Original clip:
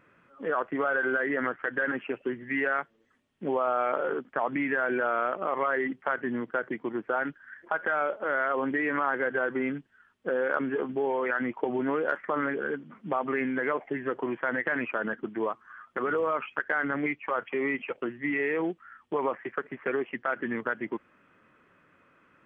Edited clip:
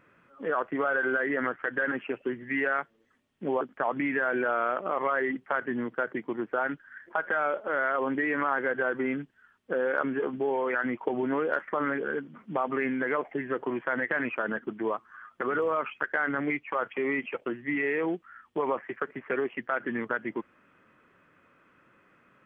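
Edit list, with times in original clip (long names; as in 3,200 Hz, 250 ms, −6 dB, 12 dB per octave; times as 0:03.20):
0:03.61–0:04.17: remove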